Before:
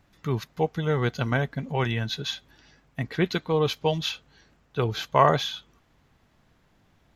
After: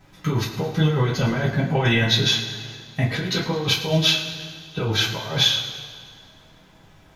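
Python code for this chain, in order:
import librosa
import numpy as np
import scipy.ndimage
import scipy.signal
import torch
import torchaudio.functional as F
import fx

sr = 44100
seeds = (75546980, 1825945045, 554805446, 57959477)

y = fx.over_compress(x, sr, threshold_db=-27.0, ratio=-0.5)
y = fx.echo_feedback(y, sr, ms=106, feedback_pct=58, wet_db=-14.0)
y = fx.rev_double_slope(y, sr, seeds[0], early_s=0.26, late_s=2.1, knee_db=-18, drr_db=-7.5)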